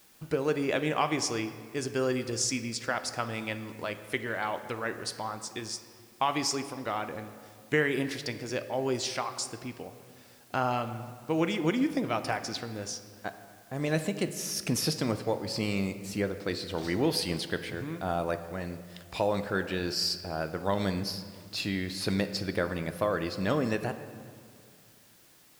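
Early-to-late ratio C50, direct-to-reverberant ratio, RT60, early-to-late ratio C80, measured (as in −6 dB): 11.0 dB, 9.5 dB, 2.2 s, 12.5 dB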